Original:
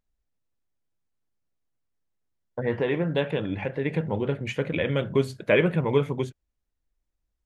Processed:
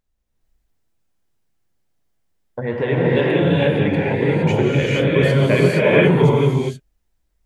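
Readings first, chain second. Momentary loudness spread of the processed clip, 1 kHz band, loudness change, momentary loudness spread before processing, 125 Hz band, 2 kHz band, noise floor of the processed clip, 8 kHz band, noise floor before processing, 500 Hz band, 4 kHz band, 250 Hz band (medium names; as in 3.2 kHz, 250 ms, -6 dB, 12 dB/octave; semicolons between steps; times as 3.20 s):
8 LU, +10.0 dB, +10.0 dB, 8 LU, +12.0 dB, +9.5 dB, -70 dBFS, no reading, -80 dBFS, +9.0 dB, +9.5 dB, +10.5 dB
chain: in parallel at -1.5 dB: peak limiter -18.5 dBFS, peak gain reduction 11 dB; on the sum: gated-style reverb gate 490 ms rising, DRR -6.5 dB; trim -1.5 dB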